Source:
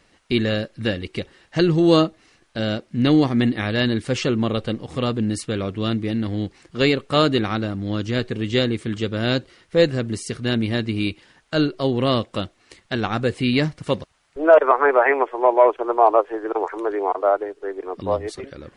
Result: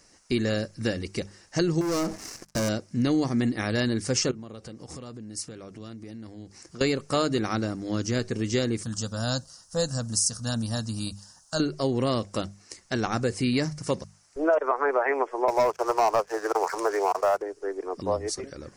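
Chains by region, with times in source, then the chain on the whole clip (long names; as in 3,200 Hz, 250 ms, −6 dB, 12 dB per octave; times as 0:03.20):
0:01.81–0:02.69: high-shelf EQ 3,200 Hz −7 dB + downward compressor 10 to 1, threshold −28 dBFS + leveller curve on the samples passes 5
0:04.31–0:06.81: high-pass filter 43 Hz + downward compressor 8 to 1, threshold −35 dBFS
0:08.83–0:11.60: high-shelf EQ 4,000 Hz +7.5 dB + phaser with its sweep stopped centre 910 Hz, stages 4
0:15.48–0:17.42: Bessel high-pass filter 580 Hz, order 6 + leveller curve on the samples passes 2
whole clip: high shelf with overshoot 4,400 Hz +8 dB, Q 3; mains-hum notches 50/100/150/200 Hz; downward compressor 3 to 1, threshold −19 dBFS; level −2.5 dB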